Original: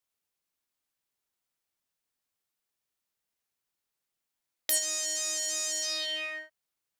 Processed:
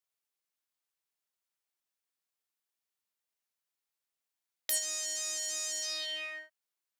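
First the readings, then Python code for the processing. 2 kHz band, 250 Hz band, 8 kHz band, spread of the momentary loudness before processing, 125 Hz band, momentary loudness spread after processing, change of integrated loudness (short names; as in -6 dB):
-4.0 dB, -9.0 dB, -4.0 dB, 10 LU, n/a, 10 LU, -4.0 dB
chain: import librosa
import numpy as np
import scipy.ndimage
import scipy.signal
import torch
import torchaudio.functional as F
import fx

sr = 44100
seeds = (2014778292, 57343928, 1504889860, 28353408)

y = fx.low_shelf(x, sr, hz=270.0, db=-11.5)
y = F.gain(torch.from_numpy(y), -4.0).numpy()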